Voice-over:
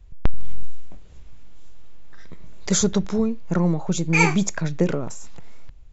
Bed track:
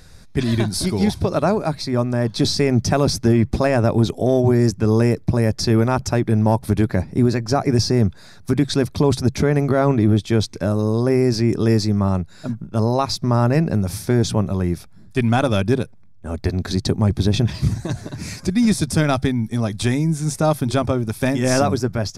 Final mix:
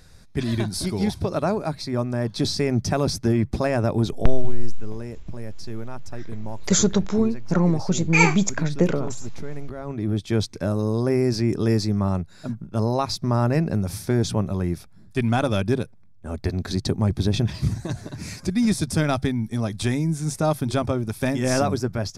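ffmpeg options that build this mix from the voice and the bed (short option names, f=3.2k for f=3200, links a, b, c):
-filter_complex "[0:a]adelay=4000,volume=1dB[a];[1:a]volume=9dB,afade=t=out:st=4.12:d=0.4:silence=0.223872,afade=t=in:st=9.84:d=0.54:silence=0.199526[b];[a][b]amix=inputs=2:normalize=0"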